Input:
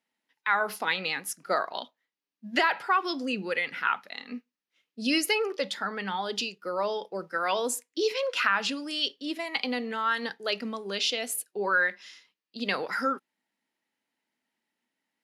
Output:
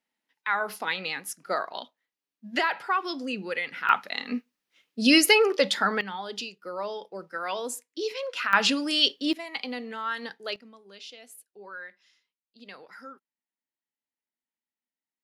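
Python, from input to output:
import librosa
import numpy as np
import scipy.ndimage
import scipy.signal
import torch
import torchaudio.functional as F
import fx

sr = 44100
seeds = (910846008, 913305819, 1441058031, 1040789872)

y = fx.gain(x, sr, db=fx.steps((0.0, -1.5), (3.89, 7.5), (6.01, -4.0), (8.53, 7.0), (9.33, -4.0), (10.56, -16.5)))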